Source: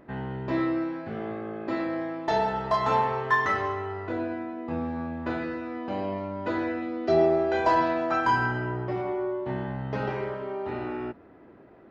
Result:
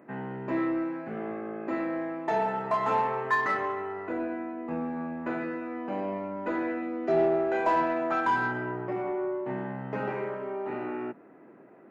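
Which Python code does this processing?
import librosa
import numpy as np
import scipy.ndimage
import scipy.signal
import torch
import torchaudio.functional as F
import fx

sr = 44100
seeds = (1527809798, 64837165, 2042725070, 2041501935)

p1 = scipy.signal.sosfilt(scipy.signal.butter(4, 150.0, 'highpass', fs=sr, output='sos'), x)
p2 = fx.band_shelf(p1, sr, hz=4300.0, db=-11.5, octaves=1.1)
p3 = 10.0 ** (-24.0 / 20.0) * np.tanh(p2 / 10.0 ** (-24.0 / 20.0))
p4 = p2 + F.gain(torch.from_numpy(p3), -4.0).numpy()
y = F.gain(torch.from_numpy(p4), -5.0).numpy()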